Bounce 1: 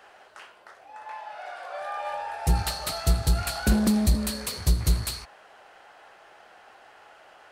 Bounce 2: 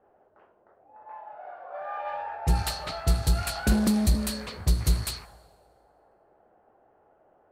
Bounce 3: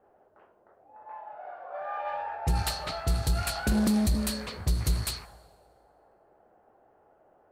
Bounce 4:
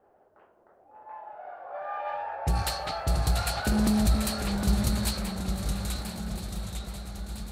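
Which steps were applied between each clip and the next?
low-pass opened by the level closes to 410 Hz, open at -22 dBFS; on a send at -23 dB: reverb RT60 1.8 s, pre-delay 78 ms; on the sum: gain -1 dB
limiter -17 dBFS, peak gain reduction 5.5 dB
swung echo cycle 1.307 s, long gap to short 3:1, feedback 49%, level -11 dB; echoes that change speed 0.53 s, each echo -1 st, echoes 3, each echo -6 dB

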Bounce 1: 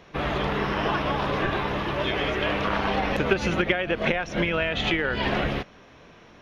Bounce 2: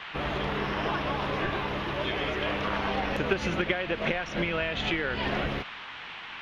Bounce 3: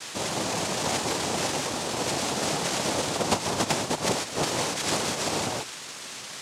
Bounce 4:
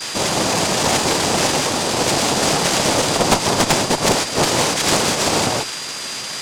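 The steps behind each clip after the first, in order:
band noise 770–3200 Hz -37 dBFS; gain -4.5 dB
noise vocoder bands 2; gain +2 dB
added harmonics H 4 -10 dB, 5 -15 dB, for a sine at -8 dBFS; whine 4800 Hz -36 dBFS; gain +5 dB

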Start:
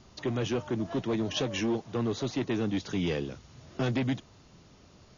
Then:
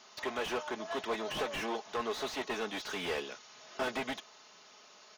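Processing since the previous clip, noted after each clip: HPF 770 Hz 12 dB/oct; comb 4.7 ms, depth 43%; slew limiter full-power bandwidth 21 Hz; gain +5 dB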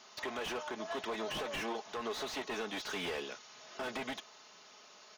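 limiter -29 dBFS, peak gain reduction 8 dB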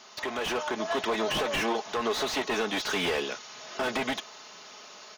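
AGC gain up to 4 dB; gain +6 dB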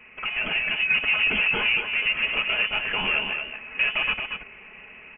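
bell 650 Hz +10 dB 0.87 oct; on a send: echo 0.231 s -6.5 dB; on the sum: inverted band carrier 3200 Hz

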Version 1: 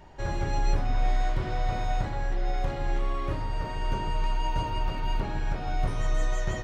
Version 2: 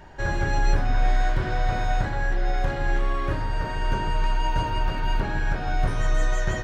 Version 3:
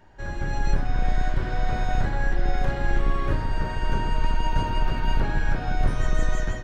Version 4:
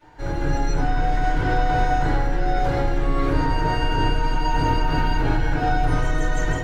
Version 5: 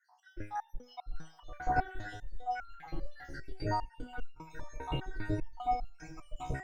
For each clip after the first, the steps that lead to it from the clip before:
bell 1600 Hz +10 dB 0.23 oct; gain +4 dB
octaver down 2 oct, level +3 dB; AGC gain up to 11 dB; gain -9 dB
limiter -17.5 dBFS, peak gain reduction 7 dB; crossover distortion -57 dBFS; FDN reverb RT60 0.39 s, low-frequency decay 0.7×, high-frequency decay 0.7×, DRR -9.5 dB; gain -1 dB
random spectral dropouts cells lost 79%; split-band echo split 710 Hz, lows 0.362 s, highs 0.109 s, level -13 dB; stepped resonator 5 Hz 67–1400 Hz; gain +1 dB

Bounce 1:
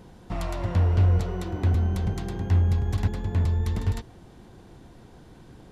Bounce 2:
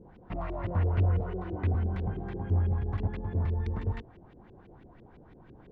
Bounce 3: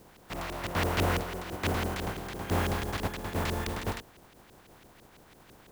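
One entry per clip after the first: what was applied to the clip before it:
LFO low-pass saw up 6 Hz 330–2900 Hz; gain -6 dB
spectral contrast lowered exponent 0.38; gain -2.5 dB

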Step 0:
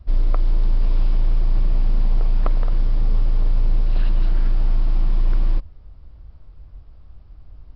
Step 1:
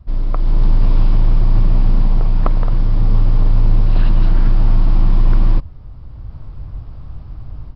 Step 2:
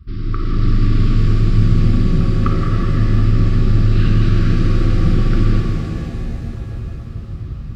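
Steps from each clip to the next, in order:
graphic EQ 125/250/1000 Hz +10/+4/+5 dB; AGC gain up to 12 dB; gain -1.5 dB
FFT band-reject 430–1100 Hz; HPF 47 Hz 12 dB/oct; shimmer reverb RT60 3.5 s, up +7 st, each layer -8 dB, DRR -1 dB; gain +2.5 dB

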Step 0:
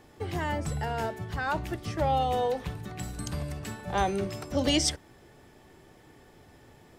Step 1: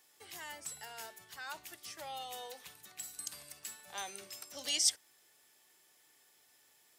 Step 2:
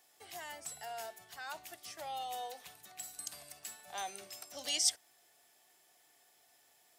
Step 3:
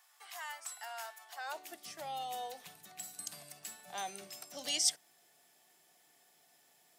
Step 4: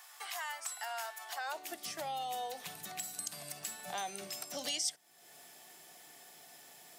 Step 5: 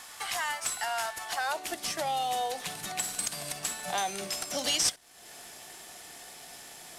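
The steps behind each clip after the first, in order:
differentiator; gain +1 dB
bell 700 Hz +12.5 dB 0.26 oct; gain -1 dB
high-pass sweep 1100 Hz -> 160 Hz, 1.18–1.93
compressor 2.5:1, threshold -53 dBFS, peak gain reduction 18 dB; gain +11.5 dB
CVSD 64 kbps; gain +8.5 dB

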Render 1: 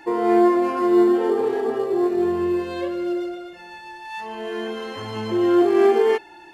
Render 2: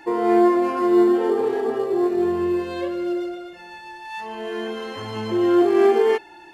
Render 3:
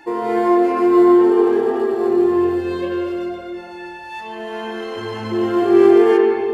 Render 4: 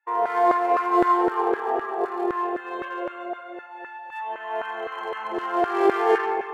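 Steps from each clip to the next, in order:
nothing audible
reverb RT60 2.3 s, pre-delay 70 ms, DRR 0 dB
Wiener smoothing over 9 samples; expander -30 dBFS; LFO high-pass saw down 3.9 Hz 550–1500 Hz; gain -2.5 dB

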